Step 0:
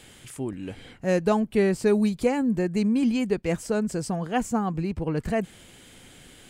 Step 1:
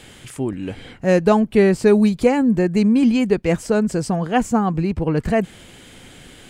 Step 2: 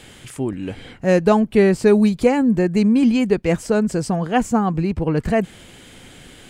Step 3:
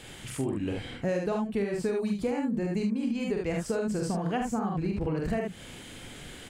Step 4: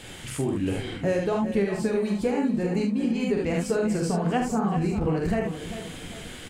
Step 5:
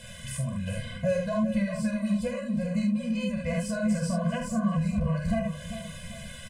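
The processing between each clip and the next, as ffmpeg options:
-af "highshelf=f=6.4k:g=-6,volume=7.5dB"
-af anull
-filter_complex "[0:a]asplit=2[a][b];[b]aecho=0:1:45|74:0.668|0.631[c];[a][c]amix=inputs=2:normalize=0,acompressor=threshold=-22dB:ratio=10,volume=-4dB"
-af "flanger=delay=9.3:depth=4.3:regen=-43:speed=1.3:shape=triangular,aecho=1:1:394|788|1182|1576:0.282|0.113|0.0451|0.018,volume=8dB"
-filter_complex "[0:a]aexciter=amount=1.2:drive=5:freq=8.7k,asplit=2[a][b];[b]adelay=14,volume=-12dB[c];[a][c]amix=inputs=2:normalize=0,afftfilt=real='re*eq(mod(floor(b*sr/1024/240),2),0)':imag='im*eq(mod(floor(b*sr/1024/240),2),0)':win_size=1024:overlap=0.75"

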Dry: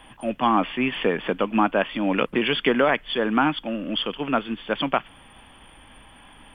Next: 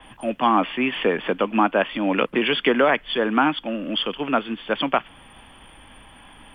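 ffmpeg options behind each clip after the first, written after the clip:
-filter_complex "[0:a]acrossover=split=180|820|1600[a][b][c][d];[a]acompressor=threshold=-46dB:ratio=6[e];[e][b][c][d]amix=inputs=4:normalize=0,adynamicequalizer=threshold=0.00708:dfrequency=5300:dqfactor=0.7:tfrequency=5300:tqfactor=0.7:attack=5:release=100:ratio=0.375:range=2:mode=cutabove:tftype=highshelf,volume=2dB"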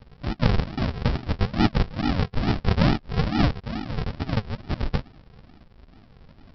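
-af "flanger=delay=2.3:depth=8.5:regen=-44:speed=1.9:shape=sinusoidal,aresample=11025,acrusher=samples=29:mix=1:aa=0.000001:lfo=1:lforange=17.4:lforate=2.3,aresample=44100,volume=2dB"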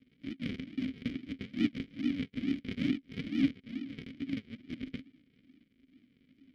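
-filter_complex "[0:a]acrusher=bits=4:mode=log:mix=0:aa=0.000001,aeval=exprs='0.596*(cos(1*acos(clip(val(0)/0.596,-1,1)))-cos(1*PI/2))+0.0596*(cos(4*acos(clip(val(0)/0.596,-1,1)))-cos(4*PI/2))+0.0299*(cos(8*acos(clip(val(0)/0.596,-1,1)))-cos(8*PI/2))':c=same,asplit=3[a][b][c];[a]bandpass=f=270:t=q:w=8,volume=0dB[d];[b]bandpass=f=2.29k:t=q:w=8,volume=-6dB[e];[c]bandpass=f=3.01k:t=q:w=8,volume=-9dB[f];[d][e][f]amix=inputs=3:normalize=0"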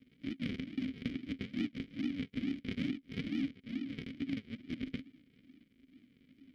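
-af "acompressor=threshold=-34dB:ratio=6,volume=1.5dB"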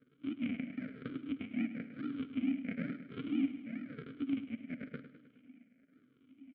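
-filter_complex "[0:a]afftfilt=real='re*pow(10,12/40*sin(2*PI*(0.59*log(max(b,1)*sr/1024/100)/log(2)-(-1)*(pts-256)/sr)))':imag='im*pow(10,12/40*sin(2*PI*(0.59*log(max(b,1)*sr/1024/100)/log(2)-(-1)*(pts-256)/sr)))':win_size=1024:overlap=0.75,highpass=190,equalizer=f=190:t=q:w=4:g=-4,equalizer=f=360:t=q:w=4:g=-7,equalizer=f=640:t=q:w=4:g=4,equalizer=f=920:t=q:w=4:g=-7,equalizer=f=1.4k:t=q:w=4:g=7,equalizer=f=1.9k:t=q:w=4:g=-7,lowpass=f=2.3k:w=0.5412,lowpass=f=2.3k:w=1.3066,asplit=2[a][b];[b]aecho=0:1:104|208|312|416|520|624|728:0.237|0.14|0.0825|0.0487|0.0287|0.017|0.01[c];[a][c]amix=inputs=2:normalize=0,volume=1dB"

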